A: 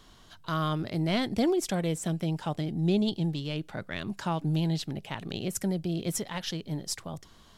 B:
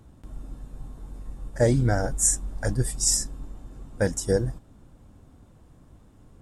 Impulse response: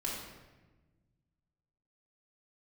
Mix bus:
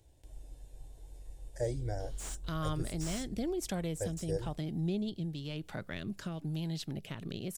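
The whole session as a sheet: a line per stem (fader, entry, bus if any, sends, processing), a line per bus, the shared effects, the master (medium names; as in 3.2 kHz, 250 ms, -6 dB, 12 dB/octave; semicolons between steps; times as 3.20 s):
-2.0 dB, 2.00 s, no send, treble shelf 11 kHz +9 dB; compression 2:1, threshold -35 dBFS, peak gain reduction 8 dB; rotary cabinet horn 1 Hz
-12.5 dB, 0.00 s, no send, static phaser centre 510 Hz, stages 4; slew-rate limiter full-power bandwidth 210 Hz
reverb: none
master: bass shelf 170 Hz +3 dB; tape noise reduction on one side only encoder only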